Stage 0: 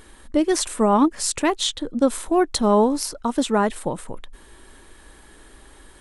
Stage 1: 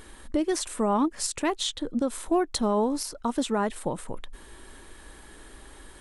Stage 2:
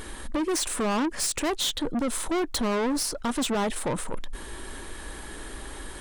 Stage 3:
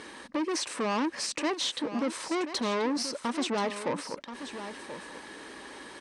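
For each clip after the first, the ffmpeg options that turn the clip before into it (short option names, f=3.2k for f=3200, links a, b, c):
-af "alimiter=limit=-16dB:level=0:latency=1:release=482"
-af "asoftclip=type=tanh:threshold=-32.5dB,volume=9dB"
-af "highpass=260,equalizer=f=380:t=q:w=4:g=-4,equalizer=f=700:t=q:w=4:g=-5,equalizer=f=1.4k:t=q:w=4:g=-5,equalizer=f=3.4k:t=q:w=4:g=-5,equalizer=f=7.2k:t=q:w=4:g=-8,lowpass=f=7.4k:w=0.5412,lowpass=f=7.4k:w=1.3066,aecho=1:1:1031:0.282"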